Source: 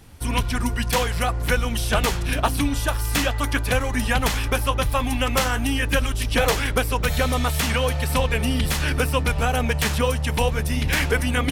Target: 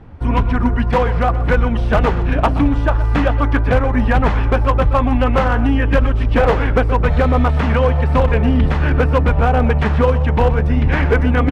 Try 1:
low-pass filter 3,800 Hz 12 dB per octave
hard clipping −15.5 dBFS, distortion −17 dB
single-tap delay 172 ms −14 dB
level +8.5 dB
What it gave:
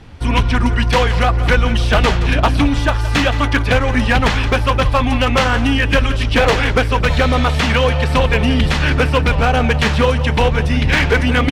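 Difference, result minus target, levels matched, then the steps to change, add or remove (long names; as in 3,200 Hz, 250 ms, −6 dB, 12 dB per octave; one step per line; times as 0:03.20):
4,000 Hz band +12.5 dB; echo 47 ms late
change: low-pass filter 1,300 Hz 12 dB per octave
change: single-tap delay 125 ms −14 dB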